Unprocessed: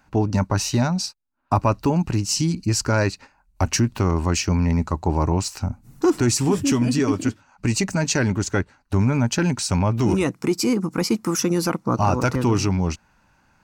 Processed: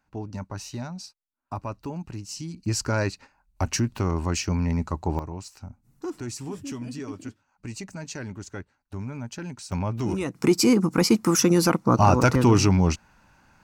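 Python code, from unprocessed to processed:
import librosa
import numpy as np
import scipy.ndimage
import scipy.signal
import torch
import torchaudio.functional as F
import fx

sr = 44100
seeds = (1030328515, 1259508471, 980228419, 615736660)

y = fx.gain(x, sr, db=fx.steps((0.0, -14.0), (2.66, -5.0), (5.19, -15.0), (9.72, -7.5), (10.35, 2.0)))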